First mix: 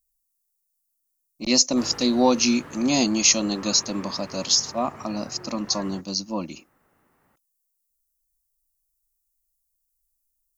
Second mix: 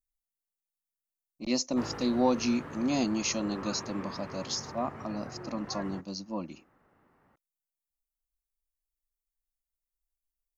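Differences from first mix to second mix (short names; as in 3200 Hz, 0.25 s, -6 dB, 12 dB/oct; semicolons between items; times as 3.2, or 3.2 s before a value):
speech -6.5 dB; master: add high shelf 3400 Hz -11.5 dB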